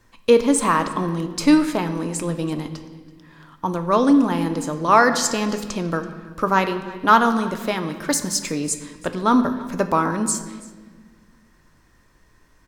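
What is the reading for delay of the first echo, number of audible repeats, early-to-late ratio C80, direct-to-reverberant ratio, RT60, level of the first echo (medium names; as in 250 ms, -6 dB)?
331 ms, 1, 11.5 dB, 7.5 dB, 1.5 s, -21.5 dB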